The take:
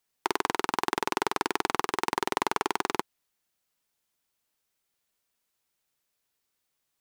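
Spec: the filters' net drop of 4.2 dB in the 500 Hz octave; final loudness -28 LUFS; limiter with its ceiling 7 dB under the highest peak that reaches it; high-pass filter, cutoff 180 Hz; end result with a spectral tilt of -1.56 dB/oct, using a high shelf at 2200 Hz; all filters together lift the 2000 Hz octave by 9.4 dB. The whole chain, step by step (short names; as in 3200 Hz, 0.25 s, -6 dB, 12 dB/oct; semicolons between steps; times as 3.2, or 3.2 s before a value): HPF 180 Hz; bell 500 Hz -6.5 dB; bell 2000 Hz +8.5 dB; high shelf 2200 Hz +7 dB; gain +2.5 dB; limiter -4.5 dBFS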